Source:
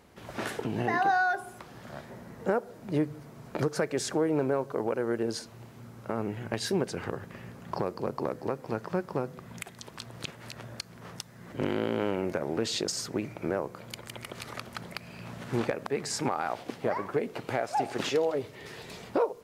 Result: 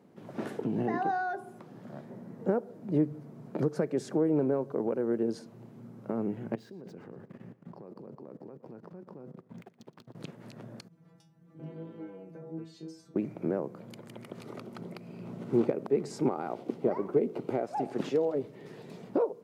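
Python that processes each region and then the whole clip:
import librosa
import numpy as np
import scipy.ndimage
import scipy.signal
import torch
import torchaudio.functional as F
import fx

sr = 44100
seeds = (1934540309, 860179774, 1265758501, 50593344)

y = fx.chain(x, sr, fx.median_filter(points=5),
    fx.level_steps(step_db=23),
    fx.echo_feedback(ms=118, feedback_pct=37, wet_db=-17.5), at=(6.55, 10.15))
y = fx.chain(y, sr, fx.low_shelf(hz=130.0, db=10.5),
    fx.stiff_resonator(f0_hz=160.0, decay_s=0.47, stiffness=0.002), at=(10.88, 13.16))
y = fx.chain(y, sr, fx.peak_eq(hz=380.0, db=6.0, octaves=0.54),
    fx.notch(hz=1700.0, q=8.0), at=(14.4, 17.65))
y = scipy.signal.sosfilt(scipy.signal.butter(4, 150.0, 'highpass', fs=sr, output='sos'), y)
y = fx.tilt_shelf(y, sr, db=9.5, hz=720.0)
y = y * 10.0 ** (-4.5 / 20.0)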